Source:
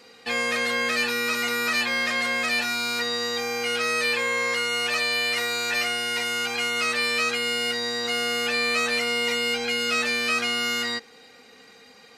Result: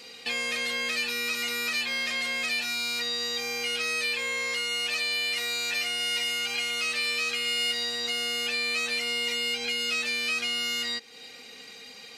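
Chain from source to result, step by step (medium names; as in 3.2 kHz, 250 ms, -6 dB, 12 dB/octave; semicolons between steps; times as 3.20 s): resonant high shelf 2 kHz +6.5 dB, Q 1.5; compression 2:1, threshold -35 dBFS, peak gain reduction 11 dB; 5.88–8.00 s: bit-crushed delay 116 ms, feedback 55%, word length 9-bit, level -12.5 dB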